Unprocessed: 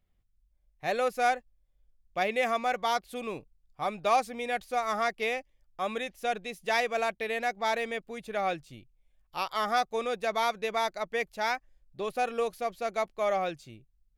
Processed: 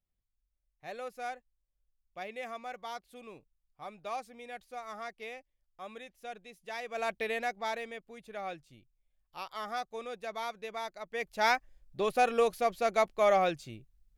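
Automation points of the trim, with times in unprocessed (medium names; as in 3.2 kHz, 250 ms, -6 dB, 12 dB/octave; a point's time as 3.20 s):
6.80 s -13 dB
7.16 s 0 dB
7.96 s -9.5 dB
11.05 s -9.5 dB
11.45 s +3 dB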